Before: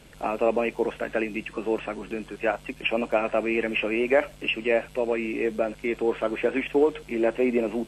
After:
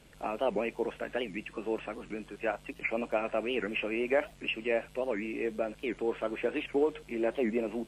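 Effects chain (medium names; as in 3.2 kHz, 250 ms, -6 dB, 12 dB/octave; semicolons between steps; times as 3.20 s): warped record 78 rpm, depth 250 cents; trim -7 dB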